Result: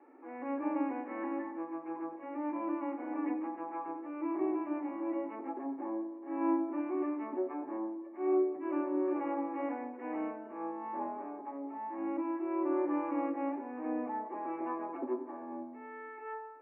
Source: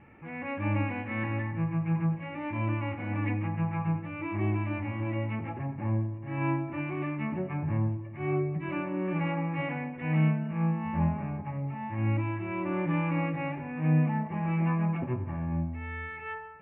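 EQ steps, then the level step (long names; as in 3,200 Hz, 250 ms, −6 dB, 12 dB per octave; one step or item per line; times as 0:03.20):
Chebyshev high-pass with heavy ripple 260 Hz, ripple 3 dB
low-pass filter 1,200 Hz 12 dB per octave
spectral tilt −2 dB per octave
0.0 dB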